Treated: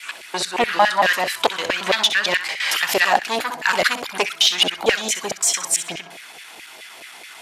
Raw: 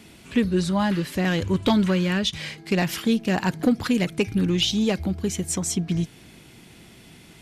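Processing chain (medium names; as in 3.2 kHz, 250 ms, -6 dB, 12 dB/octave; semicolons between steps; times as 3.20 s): slices played last to first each 113 ms, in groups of 3; sine folder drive 4 dB, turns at -10 dBFS; on a send: flutter echo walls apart 11 m, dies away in 0.33 s; on the sum: LFO high-pass saw down 4.7 Hz 560–2200 Hz; trim +2 dB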